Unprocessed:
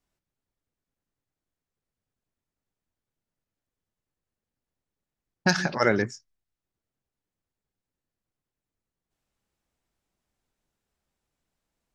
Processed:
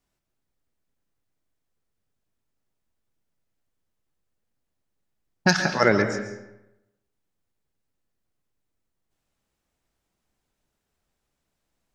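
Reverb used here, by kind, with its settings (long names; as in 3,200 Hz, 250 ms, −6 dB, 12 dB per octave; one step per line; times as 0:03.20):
comb and all-pass reverb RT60 0.91 s, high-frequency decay 0.7×, pre-delay 95 ms, DRR 8 dB
level +3 dB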